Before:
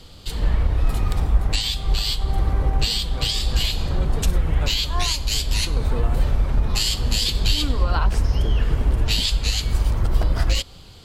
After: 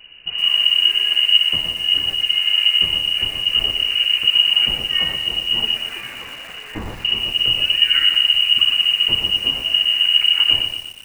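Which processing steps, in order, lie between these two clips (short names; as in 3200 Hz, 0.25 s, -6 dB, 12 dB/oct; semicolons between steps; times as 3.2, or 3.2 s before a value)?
5.74–7.05 tilt +4.5 dB/oct; inverted band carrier 2900 Hz; lo-fi delay 0.12 s, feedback 55%, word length 6-bit, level -6.5 dB; gain -1 dB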